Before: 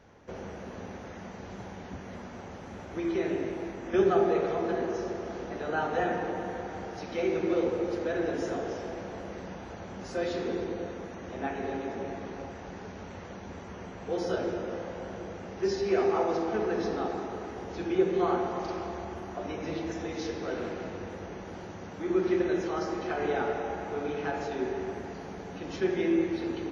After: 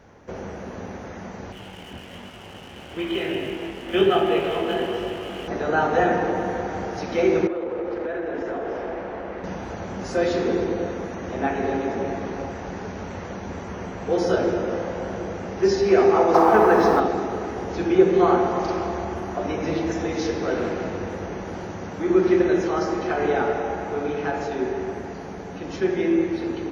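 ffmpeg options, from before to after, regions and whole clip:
ffmpeg -i in.wav -filter_complex "[0:a]asettb=1/sr,asplit=3[link_01][link_02][link_03];[link_01]atrim=end=1.524[link_04];[link_02]atrim=start=1.52:end=5.48,asetpts=PTS-STARTPTS,afade=type=in:duration=0.004:curve=qsin,afade=type=out:start_time=3.956:duration=0.004:curve=qsin,lowpass=frequency=3000:width_type=q:width=12,flanger=delay=18.5:depth=6.2:speed=1.1,aeval=exprs='sgn(val(0))*max(abs(val(0))-0.00251,0)':channel_layout=same[link_05];[link_03]atrim=start=5.476[link_06];[link_04][link_05]acrossfade=duration=0.004:curve1=hsin:curve2=qsin[link_07];[link_07][link_06]acrossfade=duration=0.004:curve1=qsin:curve2=hsin,asettb=1/sr,asplit=3[link_08][link_09][link_10];[link_08]atrim=end=7.474[link_11];[link_09]atrim=start=7.47:end=9.44,asetpts=PTS-STARTPTS,afade=type=in:duration=0.004:curve=qsin,afade=type=out:start_time=1.966:duration=0.004:curve=qsin,lowpass=2500,equalizer=frequency=120:width=0.68:gain=-10.5,acompressor=threshold=-33dB:ratio=10:attack=3.2:release=140:knee=1:detection=peak[link_12];[link_10]atrim=start=9.436[link_13];[link_11][link_12]acrossfade=duration=0.004:curve1=hsin:curve2=qsin[link_14];[link_14][link_13]acrossfade=duration=0.004:curve1=qsin:curve2=hsin,asettb=1/sr,asplit=3[link_15][link_16][link_17];[link_15]atrim=end=16.344[link_18];[link_16]atrim=start=16.34:end=17,asetpts=PTS-STARTPTS,afade=type=in:duration=0.004:curve=qsin,afade=type=out:start_time=0.656:duration=0.004:curve=qsin,equalizer=frequency=1000:width=1:gain=13,acrusher=bits=8:mix=0:aa=0.5[link_19];[link_17]atrim=start=16.996[link_20];[link_18][link_19]acrossfade=duration=0.004:curve1=hsin:curve2=qsin[link_21];[link_21][link_20]acrossfade=duration=0.004:curve1=qsin:curve2=hsin,dynaudnorm=framelen=390:gausssize=21:maxgain=3dB,equalizer=frequency=3500:width=1.3:gain=-3,volume=6.5dB" out.wav

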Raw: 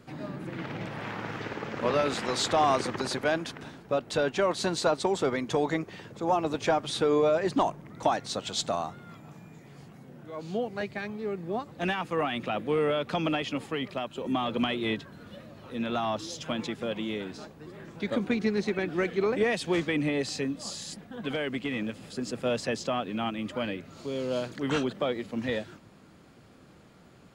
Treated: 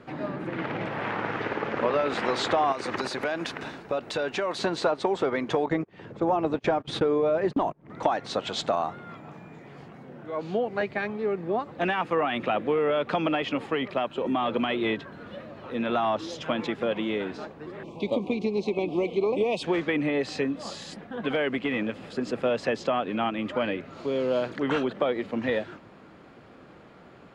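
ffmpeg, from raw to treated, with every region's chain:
ffmpeg -i in.wav -filter_complex "[0:a]asettb=1/sr,asplit=3[link_01][link_02][link_03];[link_01]atrim=end=2.724[link_04];[link_02]atrim=start=2.72:end=4.59,asetpts=PTS-STARTPTS,afade=type=in:duration=0.004:curve=qsin,afade=type=out:start_time=1.866:duration=0.004:curve=qsin,highshelf=frequency=3300:gain=11,bandreject=frequency=3200:width=16,acompressor=threshold=-30dB:ratio=6:attack=3.2:release=140:knee=1:detection=peak[link_05];[link_03]atrim=start=4.586[link_06];[link_04][link_05]acrossfade=duration=0.004:curve1=hsin:curve2=qsin[link_07];[link_07][link_06]acrossfade=duration=0.004:curve1=qsin:curve2=hsin,asettb=1/sr,asplit=3[link_08][link_09][link_10];[link_08]atrim=end=5.664[link_11];[link_09]atrim=start=5.66:end=7.9,asetpts=PTS-STARTPTS,afade=type=in:duration=0.004:curve=qsin,afade=type=out:start_time=2.236:duration=0.004:curve=qsin,agate=range=-32dB:threshold=-35dB:ratio=16:release=100:detection=peak,acompressor=mode=upward:threshold=-29dB:ratio=2.5:attack=3.2:release=140:knee=2.83:detection=peak,lowshelf=frequency=370:gain=9[link_12];[link_10]atrim=start=7.896[link_13];[link_11][link_12]acrossfade=duration=0.004:curve1=hsin:curve2=qsin[link_14];[link_14][link_13]acrossfade=duration=0.004:curve1=qsin:curve2=hsin,asettb=1/sr,asplit=3[link_15][link_16][link_17];[link_15]atrim=end=17.834[link_18];[link_16]atrim=start=17.83:end=19.63,asetpts=PTS-STARTPTS,afade=type=in:duration=0.004:curve=qsin,afade=type=out:start_time=1.796:duration=0.004:curve=qsin,asuperstop=centerf=1600:order=8:qfactor=1.3,equalizer=frequency=7700:width=0.54:gain=3.5[link_19];[link_17]atrim=start=19.626[link_20];[link_18][link_19]acrossfade=duration=0.004:curve1=hsin:curve2=qsin[link_21];[link_21][link_20]acrossfade=duration=0.004:curve1=qsin:curve2=hsin,aemphasis=mode=reproduction:type=50kf,acompressor=threshold=-28dB:ratio=6,bass=frequency=250:gain=-8,treble=frequency=4000:gain=-8,volume=8dB" out.wav

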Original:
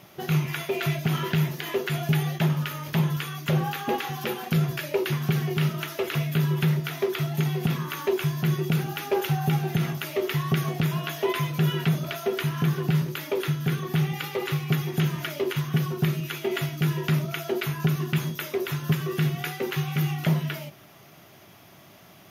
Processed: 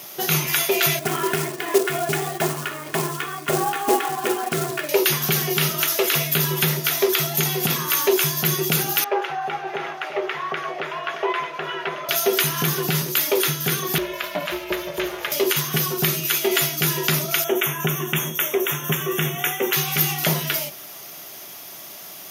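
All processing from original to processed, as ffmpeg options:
ffmpeg -i in.wav -filter_complex "[0:a]asettb=1/sr,asplit=3[link_01][link_02][link_03];[link_01]atrim=end=0.994[link_04];[link_02]atrim=start=0.99:end=4.89,asetpts=PTS-STARTPTS,afade=type=in:duration=0.004:curve=qsin,afade=type=out:start_time=3.896:duration=0.004:curve=qsin,lowpass=1700,aecho=1:1:2.8:0.59,atrim=end_sample=171990,acrusher=bits=5:mode=log:mix=0:aa=0.000001[link_05];[link_03]atrim=start=4.886[link_06];[link_04][link_05]acrossfade=duration=0.004:curve1=hsin:curve2=qsin[link_07];[link_07][link_06]acrossfade=duration=0.004:curve1=qsin:curve2=hsin,asettb=1/sr,asplit=3[link_08][link_09][link_10];[link_08]atrim=end=9.044[link_11];[link_09]atrim=start=9.04:end=12.09,asetpts=PTS-STARTPTS,afade=type=in:duration=0.004:curve=qsin,afade=type=out:start_time=3.046:duration=0.004:curve=qsin,lowpass=5900,acrossover=split=410 2300:gain=0.0794 1 0.0708[link_12][link_13][link_14];[link_12][link_13][link_14]amix=inputs=3:normalize=0,aecho=1:1:622:0.335,atrim=end_sample=134505[link_15];[link_10]atrim=start=12.086[link_16];[link_11][link_15]acrossfade=duration=0.004:curve1=hsin:curve2=qsin[link_17];[link_17][link_16]acrossfade=duration=0.004:curve1=qsin:curve2=hsin,asettb=1/sr,asplit=3[link_18][link_19][link_20];[link_18]atrim=end=13.984[link_21];[link_19]atrim=start=13.98:end=15.32,asetpts=PTS-STARTPTS,afade=type=in:duration=0.004:curve=qsin,afade=type=out:start_time=1.336:duration=0.004:curve=qsin,bass=frequency=250:gain=-4,treble=frequency=4000:gain=-14,aeval=exprs='val(0)*sin(2*PI*210*n/s)':channel_layout=same,aeval=exprs='val(0)+0.00355*sin(2*PI*660*n/s)':channel_layout=same[link_22];[link_20]atrim=start=15.316[link_23];[link_21][link_22]acrossfade=duration=0.004:curve1=hsin:curve2=qsin[link_24];[link_24][link_23]acrossfade=duration=0.004:curve1=qsin:curve2=hsin,asettb=1/sr,asplit=3[link_25][link_26][link_27];[link_25]atrim=end=17.444[link_28];[link_26]atrim=start=17.44:end=19.73,asetpts=PTS-STARTPTS,afade=type=in:duration=0.004:curve=qsin,afade=type=out:start_time=2.286:duration=0.004:curve=qsin,asuperstop=centerf=4500:order=12:qfactor=2.3,equalizer=frequency=9500:width_type=o:width=1.7:gain=-6.5[link_29];[link_27]atrim=start=19.726[link_30];[link_28][link_29]acrossfade=duration=0.004:curve1=hsin:curve2=qsin[link_31];[link_31][link_30]acrossfade=duration=0.004:curve1=qsin:curve2=hsin,highpass=110,bass=frequency=250:gain=-11,treble=frequency=4000:gain=13,acontrast=58,volume=1.5dB" out.wav

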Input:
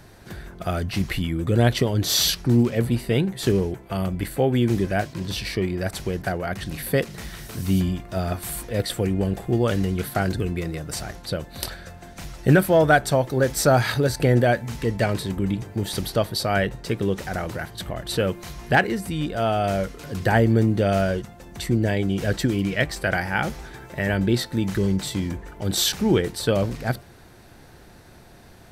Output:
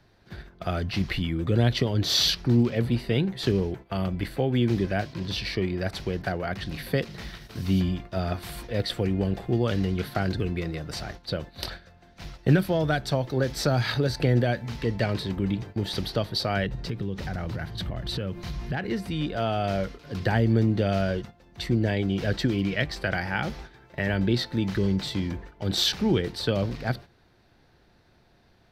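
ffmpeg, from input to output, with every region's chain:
ffmpeg -i in.wav -filter_complex "[0:a]asettb=1/sr,asplit=3[link_01][link_02][link_03];[link_01]atrim=end=16.664[link_04];[link_02]atrim=start=16.66:end=18.91,asetpts=PTS-STARTPTS,afade=type=in:duration=0.004:curve=qsin,afade=type=out:start_time=2.246:duration=0.004:curve=qsin,bass=frequency=250:gain=9,treble=frequency=4000:gain=1,acompressor=threshold=-25dB:ratio=4:attack=3.2:release=140:knee=1:detection=peak[link_05];[link_03]atrim=start=18.906[link_06];[link_04][link_05]acrossfade=duration=0.004:curve1=hsin:curve2=qsin[link_07];[link_07][link_06]acrossfade=duration=0.004:curve1=qsin:curve2=hsin,agate=range=-10dB:threshold=-36dB:ratio=16:detection=peak,highshelf=frequency=6100:width_type=q:width=1.5:gain=-9.5,acrossover=split=270|3000[link_08][link_09][link_10];[link_09]acompressor=threshold=-22dB:ratio=6[link_11];[link_08][link_11][link_10]amix=inputs=3:normalize=0,volume=-2.5dB" out.wav

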